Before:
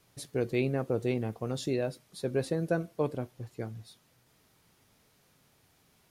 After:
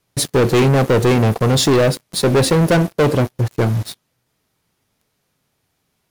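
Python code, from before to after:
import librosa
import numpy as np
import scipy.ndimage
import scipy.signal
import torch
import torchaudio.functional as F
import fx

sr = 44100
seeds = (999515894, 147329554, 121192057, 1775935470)

y = fx.leveller(x, sr, passes=5)
y = y * 10.0 ** (7.0 / 20.0)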